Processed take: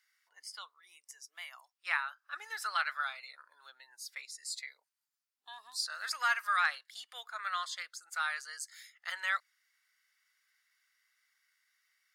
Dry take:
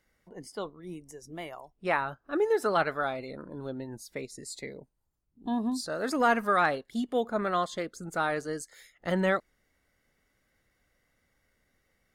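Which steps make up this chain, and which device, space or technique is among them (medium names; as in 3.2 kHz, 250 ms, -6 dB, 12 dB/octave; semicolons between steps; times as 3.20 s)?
headphones lying on a table (high-pass 1.3 kHz 24 dB/octave; peaking EQ 4.9 kHz +5.5 dB 0.39 oct)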